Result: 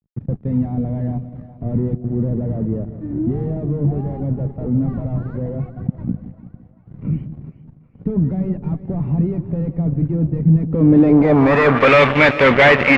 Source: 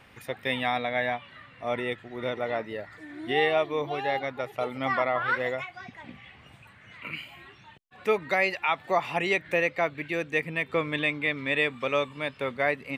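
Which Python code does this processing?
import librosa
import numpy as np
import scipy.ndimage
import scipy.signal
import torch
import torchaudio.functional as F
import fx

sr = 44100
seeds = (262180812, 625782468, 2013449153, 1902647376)

y = fx.fuzz(x, sr, gain_db=42.0, gate_db=-45.0)
y = fx.filter_sweep_lowpass(y, sr, from_hz=170.0, to_hz=2100.0, start_s=10.56, end_s=11.91, q=1.6)
y = fx.echo_split(y, sr, split_hz=650.0, low_ms=169, high_ms=394, feedback_pct=52, wet_db=-13.5)
y = y * 10.0 ** (4.0 / 20.0)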